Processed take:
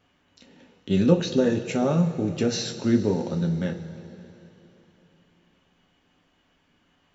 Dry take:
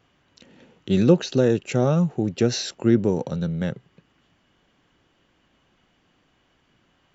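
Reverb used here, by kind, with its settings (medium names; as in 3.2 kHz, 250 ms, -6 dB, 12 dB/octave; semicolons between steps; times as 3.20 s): two-slope reverb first 0.22 s, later 3.4 s, from -18 dB, DRR 2 dB; trim -3.5 dB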